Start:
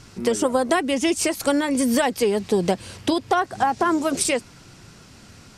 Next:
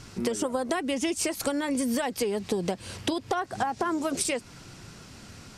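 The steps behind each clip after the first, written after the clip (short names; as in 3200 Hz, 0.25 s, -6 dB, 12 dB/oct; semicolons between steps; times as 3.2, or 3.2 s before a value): compressor, threshold -25 dBFS, peak gain reduction 10.5 dB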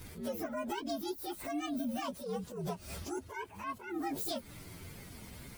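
inharmonic rescaling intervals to 124%; compressor, threshold -35 dBFS, peak gain reduction 9 dB; attack slew limiter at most 100 dB/s; gain +2 dB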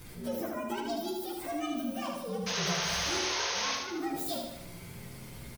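painted sound noise, 2.46–3.76, 450–6600 Hz -35 dBFS; feedback echo 76 ms, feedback 53%, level -4.5 dB; shoebox room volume 400 m³, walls furnished, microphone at 0.83 m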